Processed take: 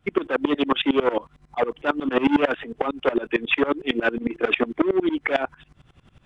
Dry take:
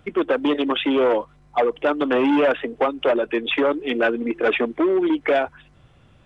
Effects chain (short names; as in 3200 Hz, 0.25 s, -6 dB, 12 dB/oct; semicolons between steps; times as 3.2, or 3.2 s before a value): bell 550 Hz -5 dB 0.85 oct; dB-ramp tremolo swelling 11 Hz, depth 22 dB; gain +6.5 dB